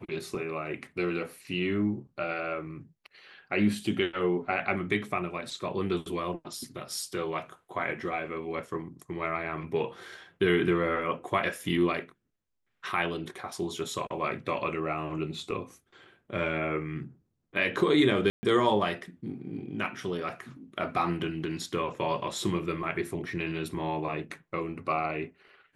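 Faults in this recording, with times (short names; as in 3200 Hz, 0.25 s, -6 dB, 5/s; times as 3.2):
18.3–18.43 gap 0.13 s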